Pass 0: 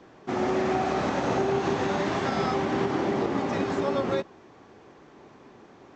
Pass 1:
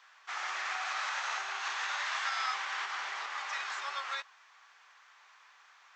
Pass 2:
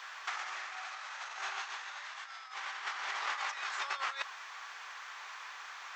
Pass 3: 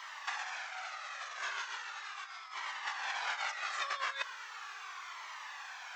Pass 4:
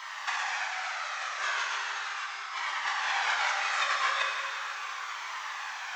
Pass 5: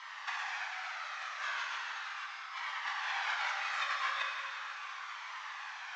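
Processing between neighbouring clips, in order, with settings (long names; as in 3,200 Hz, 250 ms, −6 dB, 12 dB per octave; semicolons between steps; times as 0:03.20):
high-pass filter 1,200 Hz 24 dB per octave; level +1 dB
compressor whose output falls as the input rises −43 dBFS, ratio −0.5; level +5 dB
flanger whose copies keep moving one way falling 0.38 Hz; level +4.5 dB
dense smooth reverb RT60 2.3 s, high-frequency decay 0.9×, DRR −1.5 dB; level +5 dB
band-pass filter 700–5,000 Hz; level −6 dB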